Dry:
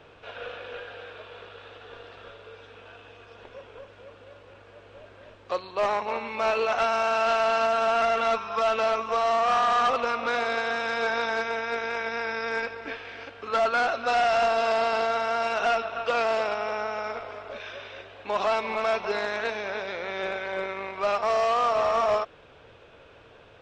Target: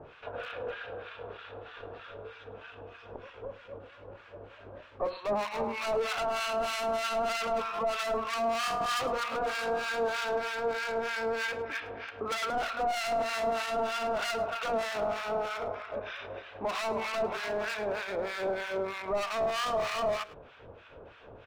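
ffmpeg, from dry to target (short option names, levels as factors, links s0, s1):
-filter_complex "[0:a]lowpass=f=1900:p=1,bandreject=f=60:t=h:w=6,bandreject=f=120:t=h:w=6,bandreject=f=180:t=h:w=6,bandreject=f=240:t=h:w=6,bandreject=f=300:t=h:w=6,bandreject=f=360:t=h:w=6,bandreject=f=420:t=h:w=6,bandreject=f=480:t=h:w=6,bandreject=f=540:t=h:w=6,asoftclip=type=hard:threshold=0.0266,acrossover=split=1100[s0][s1];[s0]aeval=exprs='val(0)*(1-1/2+1/2*cos(2*PI*2.9*n/s))':c=same[s2];[s1]aeval=exprs='val(0)*(1-1/2-1/2*cos(2*PI*2.9*n/s))':c=same[s3];[s2][s3]amix=inputs=2:normalize=0,atempo=1.1,asplit=2[s4][s5];[s5]adelay=105,volume=0.126,highshelf=f=4000:g=-2.36[s6];[s4][s6]amix=inputs=2:normalize=0,volume=2.24"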